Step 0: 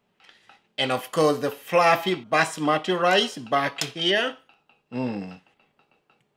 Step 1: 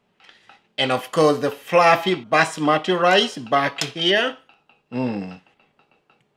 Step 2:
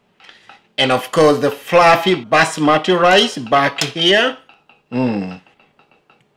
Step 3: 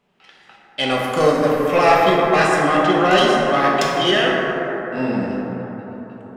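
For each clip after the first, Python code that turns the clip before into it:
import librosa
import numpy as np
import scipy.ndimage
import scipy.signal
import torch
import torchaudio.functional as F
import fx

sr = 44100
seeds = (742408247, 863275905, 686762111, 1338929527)

y1 = fx.high_shelf(x, sr, hz=12000.0, db=-11.5)
y1 = F.gain(torch.from_numpy(y1), 4.0).numpy()
y2 = 10.0 ** (-10.0 / 20.0) * np.tanh(y1 / 10.0 ** (-10.0 / 20.0))
y2 = F.gain(torch.from_numpy(y2), 7.0).numpy()
y3 = fx.rev_plate(y2, sr, seeds[0], rt60_s=4.4, hf_ratio=0.25, predelay_ms=0, drr_db=-3.5)
y3 = F.gain(torch.from_numpy(y3), -7.5).numpy()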